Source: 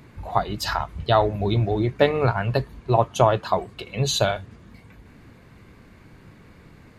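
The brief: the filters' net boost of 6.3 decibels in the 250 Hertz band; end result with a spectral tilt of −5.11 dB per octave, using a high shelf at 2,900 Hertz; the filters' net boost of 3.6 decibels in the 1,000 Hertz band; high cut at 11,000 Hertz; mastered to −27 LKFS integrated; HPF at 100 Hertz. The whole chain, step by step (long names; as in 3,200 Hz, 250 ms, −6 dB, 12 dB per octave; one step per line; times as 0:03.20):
high-pass filter 100 Hz
low-pass filter 11,000 Hz
parametric band 250 Hz +9 dB
parametric band 1,000 Hz +3.5 dB
high-shelf EQ 2,900 Hz +5.5 dB
level −7 dB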